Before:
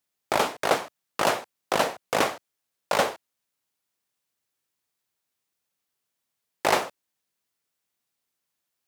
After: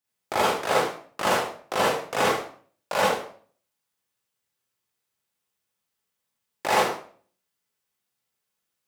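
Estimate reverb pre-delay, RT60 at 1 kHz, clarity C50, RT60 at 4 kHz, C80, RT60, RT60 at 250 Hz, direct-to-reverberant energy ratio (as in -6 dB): 37 ms, 0.45 s, 0.0 dB, 0.40 s, 6.0 dB, 0.45 s, 0.55 s, -7.5 dB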